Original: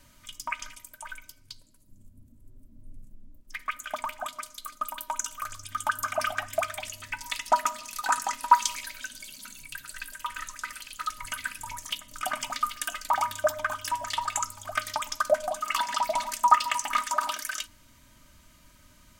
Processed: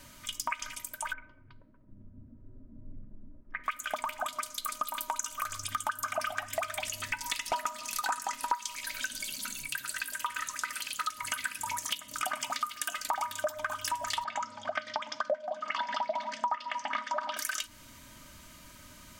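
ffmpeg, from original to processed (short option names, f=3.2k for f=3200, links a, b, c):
-filter_complex "[0:a]asettb=1/sr,asplit=3[a][b][c];[a]atrim=end=1.134[d];[b]atrim=start=1.13:end=3.64,asetpts=PTS-STARTPTS,afade=t=in:d=0.004:c=qsin,afade=t=out:st=2.506:d=0.004:c=qsin,lowpass=f=1.7k:w=0.5412,lowpass=f=1.7k:w=1.3066[e];[c]atrim=start=3.636[f];[d][e]acrossfade=d=0.004:c1=hsin:c2=qsin[g];[g][f]acrossfade=d=0.004:c1=qsin:c2=hsin,asplit=2[h][i];[i]afade=t=in:st=4.39:d=0.01,afade=t=out:st=4.81:d=0.01,aecho=0:1:290|580|870|1160|1450|1740|2030:0.668344|0.334172|0.167086|0.083543|0.0417715|0.0208857|0.0104429[j];[h][j]amix=inputs=2:normalize=0,asplit=3[k][l][m];[k]afade=t=out:st=6.46:d=0.02[n];[l]volume=21dB,asoftclip=hard,volume=-21dB,afade=t=in:st=6.46:d=0.02,afade=t=out:st=7.55:d=0.02[o];[m]afade=t=in:st=7.55:d=0.02[p];[n][o][p]amix=inputs=3:normalize=0,asettb=1/sr,asplit=3[q][r][s];[q]atrim=end=9.694[t];[r]atrim=start=9.69:end=13.54,asetpts=PTS-STARTPTS,afade=t=in:d=0.004:c=qsin,afade=t=out:st=3.846:d=0.004:c=qsin,highpass=f=130:p=1[u];[s]atrim=start=13.536[v];[t][u]acrossfade=d=0.004:c1=hsin:c2=qsin[w];[w][v]acrossfade=d=0.004:c1=qsin:c2=hsin,asettb=1/sr,asplit=3[x][y][z];[x]atrim=end=14.244[aa];[y]atrim=start=14.24:end=17.37,asetpts=PTS-STARTPTS,afade=t=in:d=0.004:c=qsin,afade=t=out:st=3.126:d=0.004:c=qsin,highpass=f=140:w=0.5412,highpass=f=140:w=1.3066,equalizer=f=230:t=q:w=4:g=5,equalizer=f=370:t=q:w=4:g=-10,equalizer=f=540:t=q:w=4:g=8,equalizer=f=1.2k:t=q:w=4:g=-6,equalizer=f=2.6k:t=q:w=4:g=-6,equalizer=f=4k:t=q:w=4:g=-6,lowpass=f=4.3k:w=0.5412,lowpass=f=4.3k:w=1.3066[ab];[z]atrim=start=17.366[ac];[aa][ab]acrossfade=d=0.004:c1=hsin:c2=qsin[ad];[ad][ac]acrossfade=d=0.004:c1=qsin:c2=hsin,lowshelf=f=82:g=-8,acompressor=threshold=-37dB:ratio=5,volume=6.5dB"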